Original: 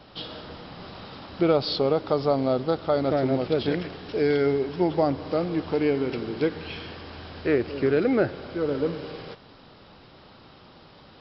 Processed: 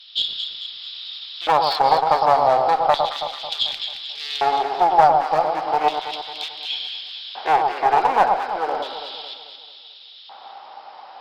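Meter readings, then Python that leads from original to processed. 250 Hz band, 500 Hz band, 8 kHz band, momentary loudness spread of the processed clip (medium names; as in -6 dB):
-12.5 dB, 0.0 dB, no reading, 15 LU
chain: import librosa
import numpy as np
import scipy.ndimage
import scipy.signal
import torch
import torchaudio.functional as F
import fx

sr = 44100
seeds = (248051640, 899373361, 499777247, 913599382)

p1 = np.minimum(x, 2.0 * 10.0 ** (-22.0 / 20.0) - x)
p2 = fx.filter_lfo_highpass(p1, sr, shape='square', hz=0.34, low_hz=790.0, high_hz=3500.0, q=6.8)
p3 = fx.cheby_harmonics(p2, sr, harmonics=(2,), levels_db=(-19,), full_scale_db=-5.5)
p4 = p3 + fx.echo_alternate(p3, sr, ms=110, hz=1200.0, feedback_pct=68, wet_db=-4.0, dry=0)
y = p4 * librosa.db_to_amplitude(3.0)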